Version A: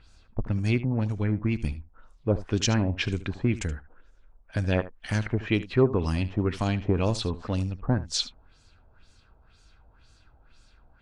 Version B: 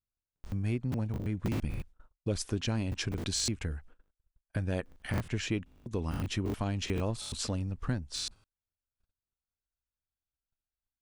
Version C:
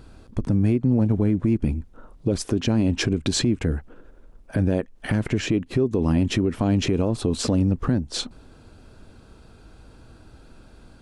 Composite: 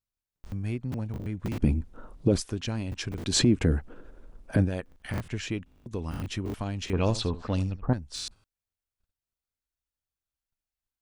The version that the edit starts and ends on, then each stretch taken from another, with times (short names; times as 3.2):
B
1.58–2.4 from C
3.31–4.65 from C, crossfade 0.10 s
6.93–7.93 from A